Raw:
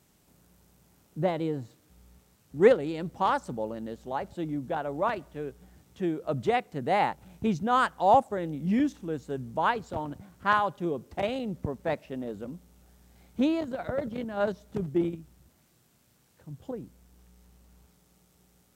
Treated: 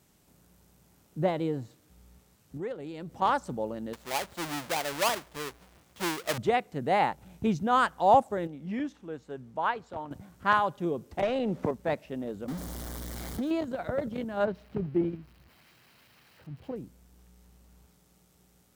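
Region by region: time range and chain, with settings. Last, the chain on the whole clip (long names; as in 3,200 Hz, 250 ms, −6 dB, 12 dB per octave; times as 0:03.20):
0:02.57–0:03.22: high-pass filter 56 Hz + downward compressor 3 to 1, threshold −38 dBFS
0:03.93–0:06.38: each half-wave held at its own peak + low-shelf EQ 450 Hz −11.5 dB
0:08.47–0:10.11: low-pass filter 2,200 Hz 6 dB per octave + low-shelf EQ 450 Hz −10.5 dB
0:11.22–0:11.71: mid-hump overdrive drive 16 dB, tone 1,300 Hz, clips at −17 dBFS + multiband upward and downward compressor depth 100%
0:12.48–0:13.51: converter with a step at zero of −33 dBFS + parametric band 2,600 Hz −13 dB 0.23 octaves + downward compressor 10 to 1, threshold −28 dBFS
0:14.45–0:16.76: spike at every zero crossing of −33 dBFS + high-frequency loss of the air 390 metres + notch filter 3,500 Hz, Q 9.9
whole clip: no processing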